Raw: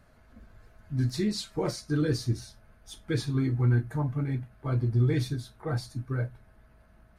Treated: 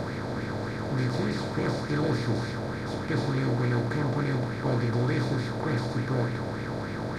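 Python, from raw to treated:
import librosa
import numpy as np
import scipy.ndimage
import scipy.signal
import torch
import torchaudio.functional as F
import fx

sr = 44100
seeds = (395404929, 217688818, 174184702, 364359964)

y = fx.bin_compress(x, sr, power=0.2)
y = fx.high_shelf(y, sr, hz=4800.0, db=-11.0)
y = fx.bell_lfo(y, sr, hz=3.4, low_hz=620.0, high_hz=2300.0, db=9)
y = y * librosa.db_to_amplitude(-6.5)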